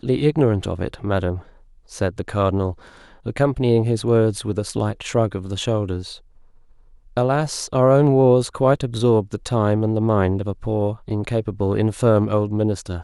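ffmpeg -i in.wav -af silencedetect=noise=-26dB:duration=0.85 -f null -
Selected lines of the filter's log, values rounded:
silence_start: 6.11
silence_end: 7.17 | silence_duration: 1.06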